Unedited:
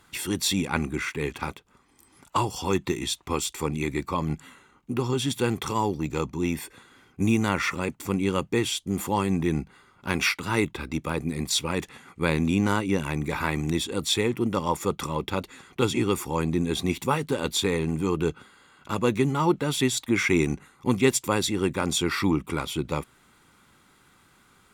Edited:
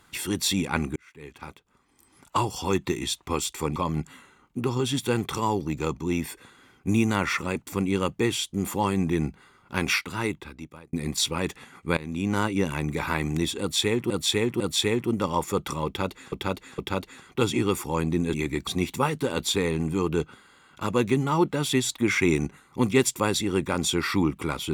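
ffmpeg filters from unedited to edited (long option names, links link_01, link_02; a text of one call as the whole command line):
ffmpeg -i in.wav -filter_complex "[0:a]asplit=11[link_01][link_02][link_03][link_04][link_05][link_06][link_07][link_08][link_09][link_10][link_11];[link_01]atrim=end=0.96,asetpts=PTS-STARTPTS,afade=type=out:start_time=0.956:duration=0.004:curve=hsin[link_12];[link_02]atrim=start=0.96:end=3.762,asetpts=PTS-STARTPTS,afade=type=in:duration=1.41[link_13];[link_03]atrim=start=4.088:end=11.26,asetpts=PTS-STARTPTS,afade=type=out:start_time=6.112:duration=1.06[link_14];[link_04]atrim=start=11.26:end=12.3,asetpts=PTS-STARTPTS,afade=type=in:duration=0.004:curve=hsin,afade=type=out:start_time=1.036:duration=0.004:curve=hsin:silence=0.112202[link_15];[link_05]atrim=start=12.3:end=14.432,asetpts=PTS-STARTPTS,afade=type=in:duration=0.48:silence=0.112202[link_16];[link_06]atrim=start=13.928:end=14.432[link_17];[link_07]atrim=start=13.928:end=15.652[link_18];[link_08]atrim=start=15.188:end=15.652[link_19];[link_09]atrim=start=15.188:end=16.752[link_20];[link_10]atrim=start=3.758:end=4.092[link_21];[link_11]atrim=start=16.748[link_22];[link_12][link_13]concat=n=2:v=0:a=1[link_23];[link_14][link_15][link_16]concat=n=3:v=0:a=1[link_24];[link_23][link_24]acrossfade=duration=0.004:curve1=hsin:curve2=hsin[link_25];[link_25][link_17]acrossfade=duration=0.004:curve1=hsin:curve2=hsin[link_26];[link_26][link_18]acrossfade=duration=0.004:curve1=hsin:curve2=hsin[link_27];[link_27][link_19]acrossfade=duration=0.004:curve1=hsin:curve2=hsin[link_28];[link_28][link_20]acrossfade=duration=0.004:curve1=hsin:curve2=hsin[link_29];[link_29][link_21]acrossfade=duration=0.004:curve1=hsin:curve2=hsin[link_30];[link_30][link_22]acrossfade=duration=0.004:curve1=hsin:curve2=hsin" out.wav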